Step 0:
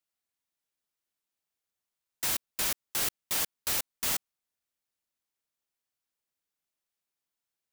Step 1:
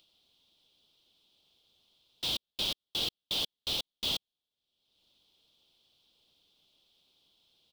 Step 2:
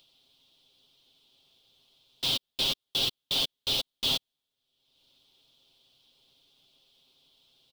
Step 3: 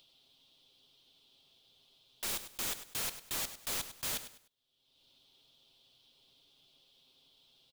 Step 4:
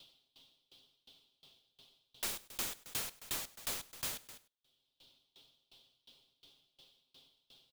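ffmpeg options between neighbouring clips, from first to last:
ffmpeg -i in.wav -af "firequalizer=gain_entry='entry(450,0);entry(1800,-17);entry(3300,13);entry(6700,-10)':delay=0.05:min_phase=1,acompressor=mode=upward:threshold=-50dB:ratio=2.5,highshelf=frequency=5300:gain=-7" out.wav
ffmpeg -i in.wav -af "aecho=1:1:7.5:0.55,volume=3.5dB" out.wav
ffmpeg -i in.wav -af "aeval=exprs='(tanh(17.8*val(0)+0.3)-tanh(0.3))/17.8':channel_layout=same,aeval=exprs='(mod(33.5*val(0)+1,2)-1)/33.5':channel_layout=same,aecho=1:1:101|202|303:0.251|0.0754|0.0226,volume=-1dB" out.wav
ffmpeg -i in.wav -af "aeval=exprs='val(0)*pow(10,-27*if(lt(mod(2.8*n/s,1),2*abs(2.8)/1000),1-mod(2.8*n/s,1)/(2*abs(2.8)/1000),(mod(2.8*n/s,1)-2*abs(2.8)/1000)/(1-2*abs(2.8)/1000))/20)':channel_layout=same,volume=8.5dB" out.wav

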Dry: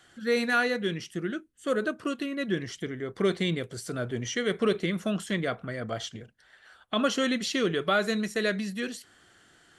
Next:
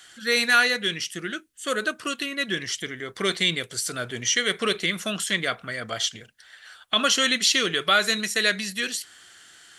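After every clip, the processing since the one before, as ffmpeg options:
ffmpeg -i in.wav -af "tiltshelf=frequency=1200:gain=-9,volume=5dB" out.wav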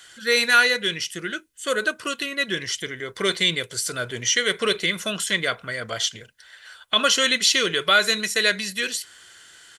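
ffmpeg -i in.wav -af "aecho=1:1:2:0.31,volume=1.5dB" out.wav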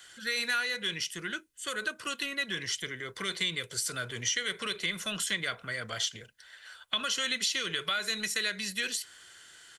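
ffmpeg -i in.wav -filter_complex "[0:a]acompressor=threshold=-21dB:ratio=10,acrossover=split=210|1000|4600[link_01][link_02][link_03][link_04];[link_02]asoftclip=type=tanh:threshold=-37dB[link_05];[link_01][link_05][link_03][link_04]amix=inputs=4:normalize=0,volume=-5dB" out.wav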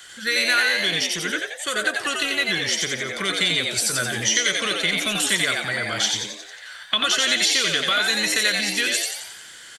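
ffmpeg -i in.wav -filter_complex "[0:a]asplit=8[link_01][link_02][link_03][link_04][link_05][link_06][link_07][link_08];[link_02]adelay=89,afreqshift=97,volume=-3dB[link_09];[link_03]adelay=178,afreqshift=194,volume=-8.7dB[link_10];[link_04]adelay=267,afreqshift=291,volume=-14.4dB[link_11];[link_05]adelay=356,afreqshift=388,volume=-20dB[link_12];[link_06]adelay=445,afreqshift=485,volume=-25.7dB[link_13];[link_07]adelay=534,afreqshift=582,volume=-31.4dB[link_14];[link_08]adelay=623,afreqshift=679,volume=-37.1dB[link_15];[link_01][link_09][link_10][link_11][link_12][link_13][link_14][link_15]amix=inputs=8:normalize=0,volume=9dB" out.wav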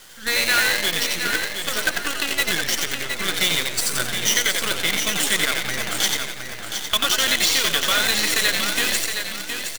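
ffmpeg -i in.wav -af "acrusher=bits=4:dc=4:mix=0:aa=0.000001,aecho=1:1:717|1434|2151|2868:0.447|0.143|0.0457|0.0146" out.wav

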